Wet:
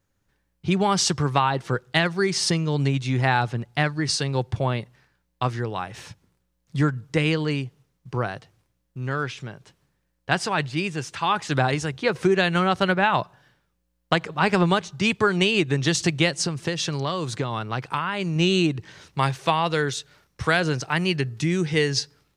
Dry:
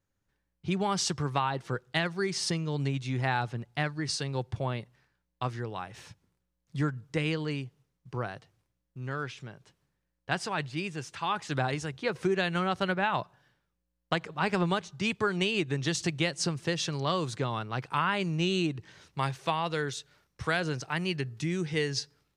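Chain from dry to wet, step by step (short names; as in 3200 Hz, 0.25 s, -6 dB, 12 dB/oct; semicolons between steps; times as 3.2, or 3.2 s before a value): 16.33–18.36 compressor, threshold -30 dBFS, peak gain reduction 8 dB; gain +8 dB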